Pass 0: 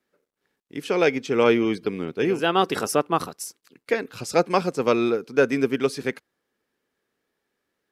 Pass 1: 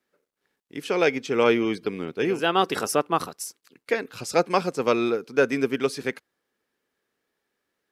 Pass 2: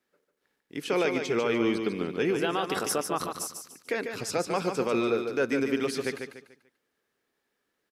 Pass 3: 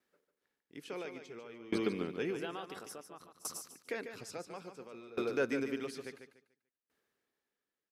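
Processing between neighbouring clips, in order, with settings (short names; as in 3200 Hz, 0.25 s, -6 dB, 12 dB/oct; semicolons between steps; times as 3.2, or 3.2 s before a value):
low shelf 410 Hz -3.5 dB
limiter -16.5 dBFS, peak gain reduction 9.5 dB; on a send: feedback echo 0.146 s, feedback 34%, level -6.5 dB; on the sum: gain -1 dB
dB-ramp tremolo decaying 0.58 Hz, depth 25 dB; gain -2 dB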